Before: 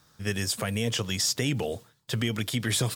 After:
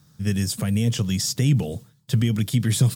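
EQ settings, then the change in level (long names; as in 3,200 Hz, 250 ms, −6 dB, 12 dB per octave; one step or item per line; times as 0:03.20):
parametric band 160 Hz +13.5 dB 1.6 octaves
low-shelf EQ 210 Hz +7.5 dB
high-shelf EQ 3,900 Hz +8.5 dB
−5.5 dB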